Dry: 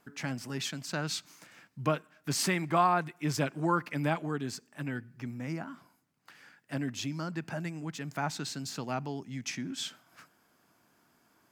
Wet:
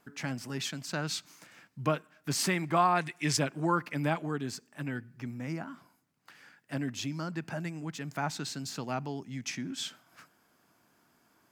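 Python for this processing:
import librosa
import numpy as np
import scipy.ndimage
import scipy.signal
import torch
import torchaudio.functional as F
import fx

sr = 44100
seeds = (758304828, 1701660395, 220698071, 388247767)

y = fx.spec_box(x, sr, start_s=2.96, length_s=0.41, low_hz=1600.0, high_hz=11000.0, gain_db=8)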